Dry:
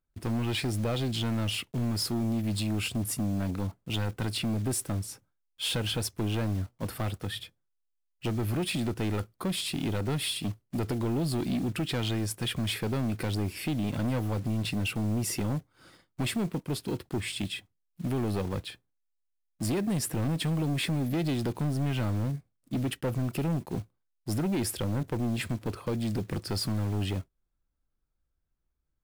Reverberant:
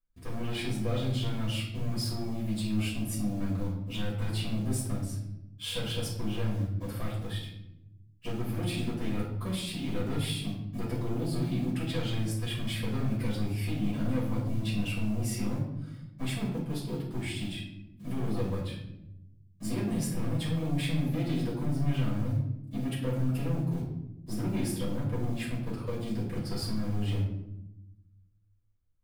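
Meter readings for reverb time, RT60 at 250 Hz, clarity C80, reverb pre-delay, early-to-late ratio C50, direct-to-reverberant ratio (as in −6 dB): 0.90 s, 1.5 s, 7.5 dB, 4 ms, 4.0 dB, −7.5 dB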